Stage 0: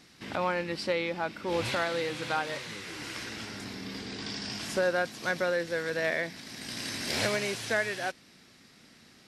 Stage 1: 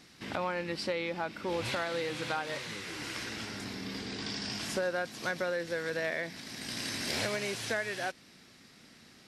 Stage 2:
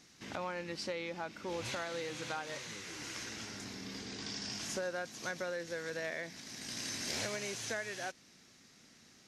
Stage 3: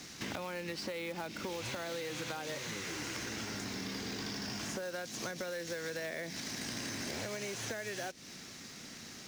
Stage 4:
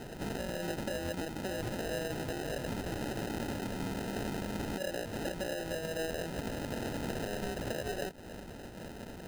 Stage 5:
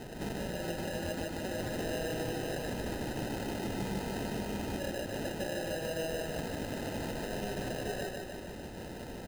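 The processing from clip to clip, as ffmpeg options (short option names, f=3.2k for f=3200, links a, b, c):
-af "acompressor=threshold=-31dB:ratio=2.5"
-af "equalizer=f=6.4k:w=3.3:g=10,volume=-6dB"
-filter_complex "[0:a]acrossover=split=630|2100[a][b][c];[a]acompressor=threshold=-46dB:ratio=4[d];[b]acompressor=threshold=-52dB:ratio=4[e];[c]acompressor=threshold=-50dB:ratio=4[f];[d][e][f]amix=inputs=3:normalize=0,acrossover=split=330[g][h];[h]acrusher=bits=3:mode=log:mix=0:aa=0.000001[i];[g][i]amix=inputs=2:normalize=0,acompressor=threshold=-51dB:ratio=3,volume=12.5dB"
-filter_complex "[0:a]asplit=2[a][b];[b]alimiter=level_in=8dB:limit=-24dB:level=0:latency=1:release=33,volume=-8dB,volume=-1dB[c];[a][c]amix=inputs=2:normalize=0,acrusher=samples=39:mix=1:aa=0.000001,volume=-1.5dB"
-af "alimiter=level_in=5.5dB:limit=-24dB:level=0:latency=1:release=312,volume=-5.5dB,bandreject=f=1.4k:w=12,aecho=1:1:150|300|450|600|750|900|1050|1200:0.708|0.389|0.214|0.118|0.0648|0.0356|0.0196|0.0108"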